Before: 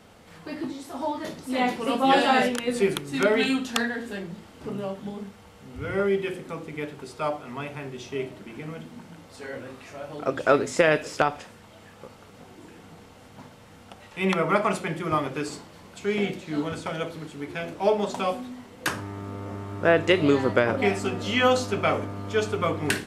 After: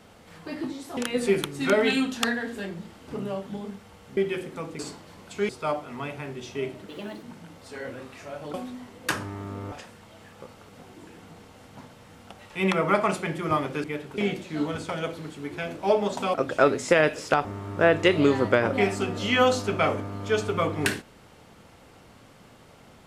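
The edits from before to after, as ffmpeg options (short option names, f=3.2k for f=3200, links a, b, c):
-filter_complex "[0:a]asplit=13[a][b][c][d][e][f][g][h][i][j][k][l][m];[a]atrim=end=0.972[n];[b]atrim=start=2.498:end=5.702[o];[c]atrim=start=6.098:end=6.722[p];[d]atrim=start=15.448:end=16.152[q];[e]atrim=start=7.058:end=8.454[r];[f]atrim=start=8.45:end=8.91,asetpts=PTS-STARTPTS,asetrate=58212,aresample=44100,atrim=end_sample=15368,asetpts=PTS-STARTPTS[s];[g]atrim=start=8.906:end=10.222[t];[h]atrim=start=18.308:end=19.492[u];[i]atrim=start=11.328:end=15.452[v];[j]atrim=start=6.718:end=7.062[w];[k]atrim=start=16.148:end=18.312[x];[l]atrim=start=10.218:end=11.332[y];[m]atrim=start=19.488[z];[n][o]acrossfade=d=0.004:c1=hsin:c2=hsin[aa];[aa][p]acrossfade=d=0.004:c1=hsin:c2=hsin[ab];[ab][q]acrossfade=d=0.004:c1=hsin:c2=hsin[ac];[ac][r]acrossfade=d=0.004:c1=hsin:c2=hsin[ad];[ad][s]acrossfade=d=0.004:c1=hsin:c2=hsin[ae];[ae][t]acrossfade=d=0.004:c1=hsin:c2=hsin[af];[af][u]acrossfade=d=0.004:c1=hsin:c2=hsin[ag];[ag][v]acrossfade=d=0.004:c1=hsin:c2=hsin[ah];[ah][w]acrossfade=d=0.004:c1=hsin:c2=hsin[ai];[ai][x]acrossfade=d=0.004:c1=hsin:c2=hsin[aj];[aj][y]acrossfade=d=0.004:c1=hsin:c2=hsin[ak];[ak][z]acrossfade=d=0.004:c1=hsin:c2=hsin"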